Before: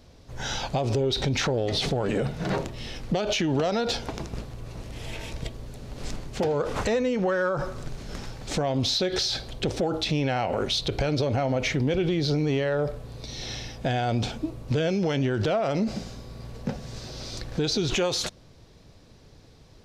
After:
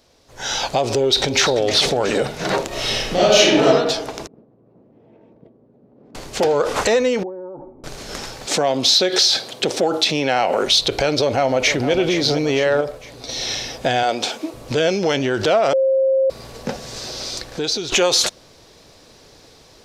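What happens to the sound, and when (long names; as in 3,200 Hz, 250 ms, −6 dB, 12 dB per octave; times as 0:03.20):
0:00.94–0:01.58: delay throw 340 ms, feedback 60%, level −11.5 dB
0:02.67–0:03.65: thrown reverb, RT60 1.1 s, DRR −10 dB
0:04.27–0:06.15: four-pole ladder band-pass 240 Hz, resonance 30%
0:07.23–0:07.84: formant resonators in series u
0:08.46–0:10.65: high-pass filter 130 Hz 24 dB per octave
0:11.21–0:11.92: delay throw 460 ms, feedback 60%, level −10.5 dB
0:12.81–0:13.29: clip gain −5 dB
0:14.03–0:14.54: high-pass filter 290 Hz
0:15.73–0:16.30: beep over 533 Hz −22 dBFS
0:17.11–0:17.92: fade out, to −9 dB
whole clip: bass and treble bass −13 dB, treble +4 dB; automatic gain control gain up to 10 dB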